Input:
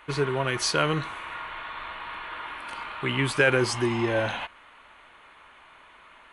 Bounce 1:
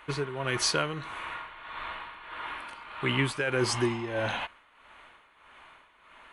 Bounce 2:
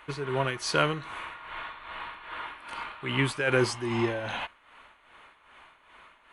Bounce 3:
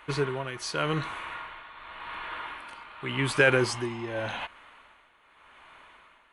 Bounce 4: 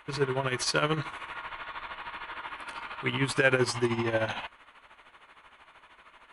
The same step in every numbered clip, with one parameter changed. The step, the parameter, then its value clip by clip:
tremolo, rate: 1.6 Hz, 2.5 Hz, 0.87 Hz, 13 Hz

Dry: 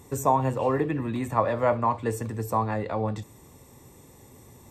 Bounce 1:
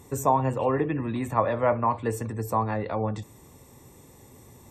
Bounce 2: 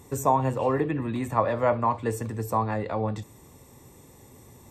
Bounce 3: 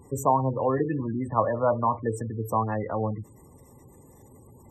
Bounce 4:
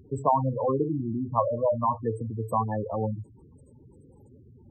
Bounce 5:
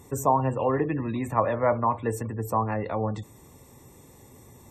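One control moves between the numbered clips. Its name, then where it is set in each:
spectral gate, under each frame's peak: -45 dB, -60 dB, -20 dB, -10 dB, -35 dB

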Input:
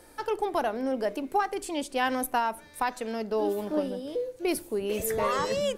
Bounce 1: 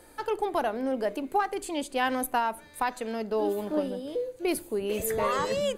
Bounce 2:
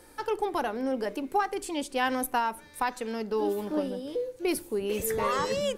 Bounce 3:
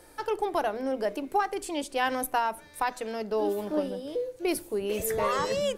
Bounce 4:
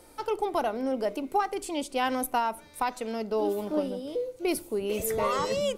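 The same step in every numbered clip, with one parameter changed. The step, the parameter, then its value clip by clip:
band-stop, frequency: 5.5 kHz, 650 Hz, 240 Hz, 1.7 kHz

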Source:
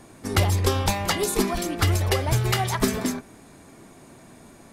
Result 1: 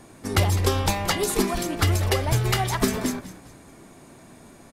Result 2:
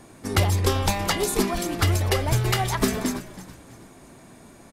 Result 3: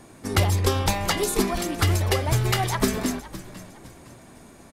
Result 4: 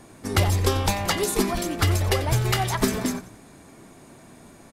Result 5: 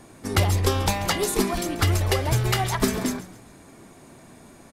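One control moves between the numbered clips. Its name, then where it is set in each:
frequency-shifting echo, time: 205 ms, 327 ms, 510 ms, 90 ms, 137 ms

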